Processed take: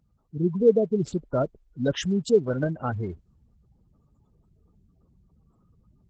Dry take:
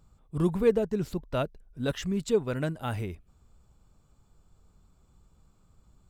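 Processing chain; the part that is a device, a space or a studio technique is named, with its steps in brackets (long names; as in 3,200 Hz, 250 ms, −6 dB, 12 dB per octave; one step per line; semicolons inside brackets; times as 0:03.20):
noise-suppressed video call (high-pass filter 110 Hz 6 dB per octave; gate on every frequency bin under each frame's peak −15 dB strong; automatic gain control gain up to 7.5 dB; level −1.5 dB; Opus 12 kbit/s 48,000 Hz)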